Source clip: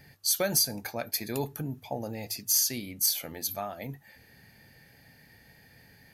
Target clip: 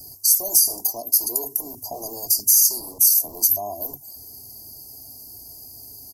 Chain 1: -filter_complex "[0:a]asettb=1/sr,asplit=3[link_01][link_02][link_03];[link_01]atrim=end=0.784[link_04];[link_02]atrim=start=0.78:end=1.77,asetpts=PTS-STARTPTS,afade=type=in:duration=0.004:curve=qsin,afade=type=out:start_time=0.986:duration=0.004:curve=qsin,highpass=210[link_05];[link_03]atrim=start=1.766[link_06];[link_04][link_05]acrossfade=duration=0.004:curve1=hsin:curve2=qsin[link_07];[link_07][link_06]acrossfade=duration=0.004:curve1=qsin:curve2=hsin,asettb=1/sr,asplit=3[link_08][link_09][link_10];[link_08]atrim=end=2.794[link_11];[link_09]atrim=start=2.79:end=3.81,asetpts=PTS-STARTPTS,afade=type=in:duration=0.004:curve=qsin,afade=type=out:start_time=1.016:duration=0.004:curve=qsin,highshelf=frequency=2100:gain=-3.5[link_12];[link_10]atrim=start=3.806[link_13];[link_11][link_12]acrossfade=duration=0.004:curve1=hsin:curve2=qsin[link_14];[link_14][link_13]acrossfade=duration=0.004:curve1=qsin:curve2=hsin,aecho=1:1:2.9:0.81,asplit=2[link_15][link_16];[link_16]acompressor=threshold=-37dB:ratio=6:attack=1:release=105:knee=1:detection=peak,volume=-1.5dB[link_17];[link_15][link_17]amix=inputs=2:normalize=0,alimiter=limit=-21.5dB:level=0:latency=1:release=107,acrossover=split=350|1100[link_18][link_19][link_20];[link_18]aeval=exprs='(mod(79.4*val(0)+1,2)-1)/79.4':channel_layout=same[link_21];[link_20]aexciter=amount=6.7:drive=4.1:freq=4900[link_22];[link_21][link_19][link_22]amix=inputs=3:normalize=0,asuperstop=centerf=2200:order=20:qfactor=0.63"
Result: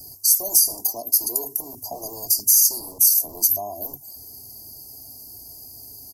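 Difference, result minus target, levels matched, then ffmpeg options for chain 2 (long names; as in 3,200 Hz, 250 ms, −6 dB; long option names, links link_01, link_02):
downward compressor: peak gain reduction +8.5 dB
-filter_complex "[0:a]asettb=1/sr,asplit=3[link_01][link_02][link_03];[link_01]atrim=end=0.784[link_04];[link_02]atrim=start=0.78:end=1.77,asetpts=PTS-STARTPTS,afade=type=in:duration=0.004:curve=qsin,afade=type=out:start_time=0.986:duration=0.004:curve=qsin,highpass=210[link_05];[link_03]atrim=start=1.766[link_06];[link_04][link_05]acrossfade=duration=0.004:curve1=hsin:curve2=qsin[link_07];[link_07][link_06]acrossfade=duration=0.004:curve1=qsin:curve2=hsin,asettb=1/sr,asplit=3[link_08][link_09][link_10];[link_08]atrim=end=2.794[link_11];[link_09]atrim=start=2.79:end=3.81,asetpts=PTS-STARTPTS,afade=type=in:duration=0.004:curve=qsin,afade=type=out:start_time=1.016:duration=0.004:curve=qsin,highshelf=frequency=2100:gain=-3.5[link_12];[link_10]atrim=start=3.806[link_13];[link_11][link_12]acrossfade=duration=0.004:curve1=hsin:curve2=qsin[link_14];[link_14][link_13]acrossfade=duration=0.004:curve1=qsin:curve2=hsin,aecho=1:1:2.9:0.81,asplit=2[link_15][link_16];[link_16]acompressor=threshold=-26.5dB:ratio=6:attack=1:release=105:knee=1:detection=peak,volume=-1.5dB[link_17];[link_15][link_17]amix=inputs=2:normalize=0,alimiter=limit=-21.5dB:level=0:latency=1:release=107,acrossover=split=350|1100[link_18][link_19][link_20];[link_18]aeval=exprs='(mod(79.4*val(0)+1,2)-1)/79.4':channel_layout=same[link_21];[link_20]aexciter=amount=6.7:drive=4.1:freq=4900[link_22];[link_21][link_19][link_22]amix=inputs=3:normalize=0,asuperstop=centerf=2200:order=20:qfactor=0.63"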